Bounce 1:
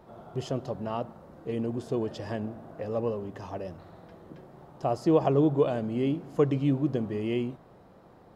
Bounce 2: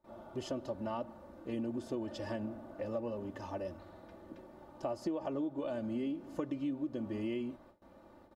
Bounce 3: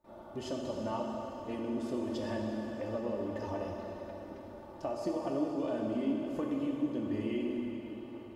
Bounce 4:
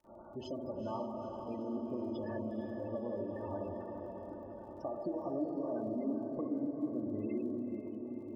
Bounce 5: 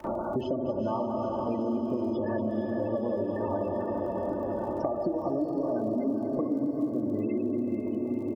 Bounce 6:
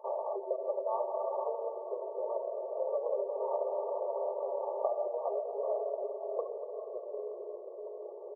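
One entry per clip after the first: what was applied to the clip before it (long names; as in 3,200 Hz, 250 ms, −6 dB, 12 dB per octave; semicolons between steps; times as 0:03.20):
noise gate with hold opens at −45 dBFS; comb filter 3.4 ms, depth 74%; downward compressor 10 to 1, threshold −28 dBFS, peak gain reduction 13 dB; level −5 dB
dense smooth reverb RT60 4.1 s, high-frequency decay 0.9×, DRR −1 dB
gate on every frequency bin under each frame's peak −20 dB strong; feedback delay with all-pass diffusion 462 ms, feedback 61%, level −7.5 dB; surface crackle 40 per second −57 dBFS; level −3.5 dB
single-tap delay 234 ms −14 dB; multiband upward and downward compressor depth 100%; level +8 dB
adaptive Wiener filter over 25 samples; linear-phase brick-wall band-pass 390–1,200 Hz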